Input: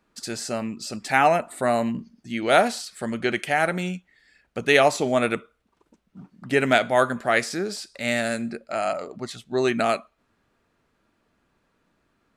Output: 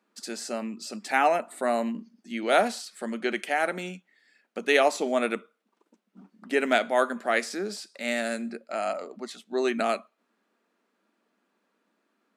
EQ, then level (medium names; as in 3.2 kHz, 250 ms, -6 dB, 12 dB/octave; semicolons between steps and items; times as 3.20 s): elliptic high-pass 200 Hz, stop band 40 dB; -3.5 dB